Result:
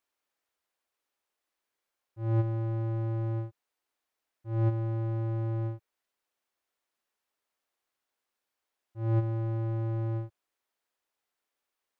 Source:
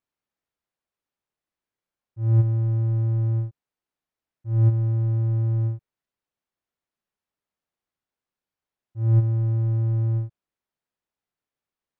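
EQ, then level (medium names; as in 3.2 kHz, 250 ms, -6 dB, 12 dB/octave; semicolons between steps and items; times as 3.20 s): peaking EQ 150 Hz -11 dB 0.83 oct; bass shelf 220 Hz -11 dB; +5.0 dB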